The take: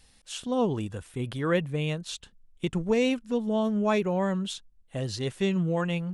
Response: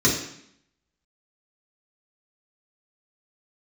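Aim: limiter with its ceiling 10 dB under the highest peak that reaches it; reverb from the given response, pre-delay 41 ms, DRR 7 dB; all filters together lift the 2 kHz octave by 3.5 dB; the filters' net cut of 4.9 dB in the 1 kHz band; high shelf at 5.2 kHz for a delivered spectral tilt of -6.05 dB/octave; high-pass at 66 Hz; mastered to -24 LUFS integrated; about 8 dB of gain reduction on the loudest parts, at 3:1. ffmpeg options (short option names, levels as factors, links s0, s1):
-filter_complex "[0:a]highpass=66,equalizer=f=1000:t=o:g=-8,equalizer=f=2000:t=o:g=8,highshelf=f=5200:g=-8,acompressor=threshold=0.0282:ratio=3,alimiter=level_in=2.11:limit=0.0631:level=0:latency=1,volume=0.473,asplit=2[s0][s1];[1:a]atrim=start_sample=2205,adelay=41[s2];[s1][s2]afir=irnorm=-1:irlink=0,volume=0.0668[s3];[s0][s3]amix=inputs=2:normalize=0,volume=3.98"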